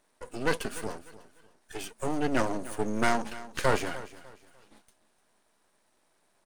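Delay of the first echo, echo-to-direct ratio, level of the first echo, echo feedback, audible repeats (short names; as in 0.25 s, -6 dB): 0.299 s, -16.5 dB, -17.0 dB, 30%, 2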